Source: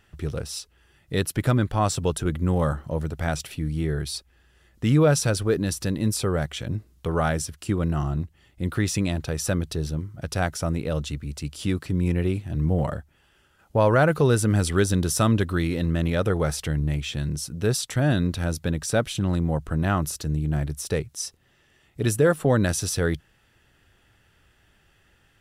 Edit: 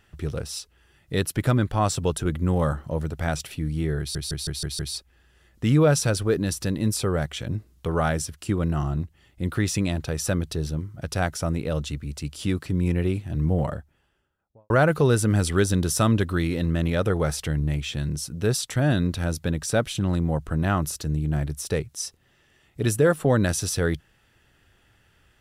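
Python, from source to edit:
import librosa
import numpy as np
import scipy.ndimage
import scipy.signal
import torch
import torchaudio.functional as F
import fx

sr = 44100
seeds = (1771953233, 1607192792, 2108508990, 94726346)

y = fx.studio_fade_out(x, sr, start_s=12.69, length_s=1.21)
y = fx.edit(y, sr, fx.stutter(start_s=3.99, slice_s=0.16, count=6), tone=tone)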